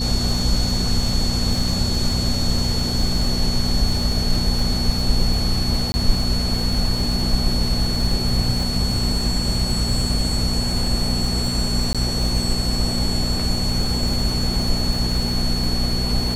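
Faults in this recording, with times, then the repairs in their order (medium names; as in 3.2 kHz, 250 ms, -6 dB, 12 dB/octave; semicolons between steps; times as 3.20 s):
crackle 43 per s -25 dBFS
hum 60 Hz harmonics 4 -25 dBFS
whine 4.4 kHz -25 dBFS
5.92–5.94 s: dropout 20 ms
11.93–11.95 s: dropout 16 ms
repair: de-click; band-stop 4.4 kHz, Q 30; de-hum 60 Hz, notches 4; interpolate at 5.92 s, 20 ms; interpolate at 11.93 s, 16 ms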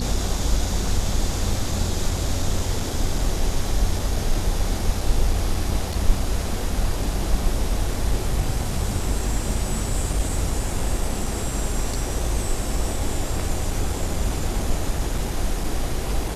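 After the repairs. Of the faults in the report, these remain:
nothing left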